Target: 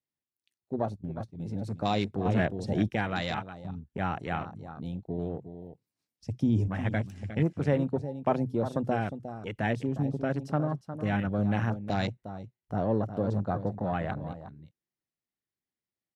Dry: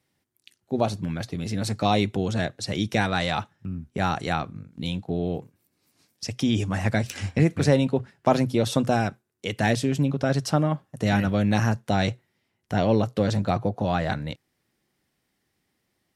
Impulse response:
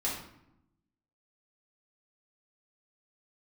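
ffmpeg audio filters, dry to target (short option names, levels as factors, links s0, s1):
-filter_complex "[0:a]asettb=1/sr,asplit=3[s0][s1][s2];[s0]atrim=end=6.274[s3];[s1]atrim=start=6.27:end=6.68,asetpts=PTS-STARTPTS,afade=t=in:d=0.004:c=qsin,afade=t=out:st=0.406:d=0.004:c=qsin,bass=f=250:g=7,treble=f=4000:g=2[s4];[s2]atrim=start=6.676[s5];[s3][s4]acrossfade=d=0.004:c1=hsin:c2=qsin[s6];[s6][s5]acrossfade=d=0.004:c1=qsin:c2=hsin,aecho=1:1:358:0.299,asettb=1/sr,asplit=3[s7][s8][s9];[s7]atrim=end=0.824[s10];[s8]atrim=start=0.82:end=1.4,asetpts=PTS-STARTPTS,afade=t=in:d=0.004:c=qsin,afade=t=out:st=0.576:d=0.004:c=qsin,agate=range=0.251:threshold=0.0398:ratio=16:detection=peak[s11];[s9]atrim=start=1.396[s12];[s10][s11]acrossfade=d=0.004:c1=hsin:c2=qsin[s13];[s13][s12]acrossfade=d=0.004:c1=qsin:c2=hsin,afwtdn=0.0224,asettb=1/sr,asplit=3[s14][s15][s16];[s14]atrim=end=2.254[s17];[s15]atrim=start=2.25:end=2.89,asetpts=PTS-STARTPTS,afade=t=in:d=0.004:c=qsin,afade=t=out:st=0.636:d=0.004:c=qsin,acontrast=64[s18];[s16]atrim=start=2.886[s19];[s17][s18]acrossfade=d=0.004:c1=hsin:c2=qsin[s20];[s20][s19]acrossfade=d=0.004:c1=qsin:c2=hsin,volume=0.473"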